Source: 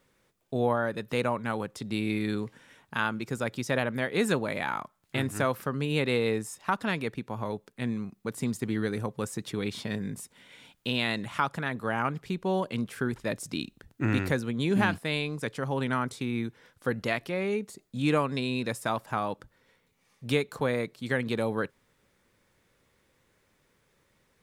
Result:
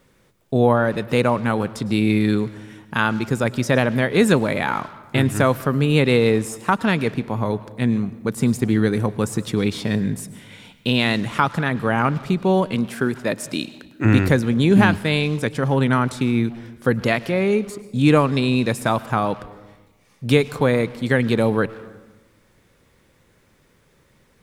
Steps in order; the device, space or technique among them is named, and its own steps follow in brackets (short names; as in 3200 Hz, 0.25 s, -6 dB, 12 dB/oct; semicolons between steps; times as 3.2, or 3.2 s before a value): saturated reverb return (on a send at -12.5 dB: reverb RT60 1.0 s, pre-delay 0.1 s + soft clip -31.5 dBFS, distortion -7 dB); 12.74–14.04 on the sum: HPF 190 Hz -> 430 Hz 6 dB/oct; low shelf 390 Hz +5 dB; gain +8 dB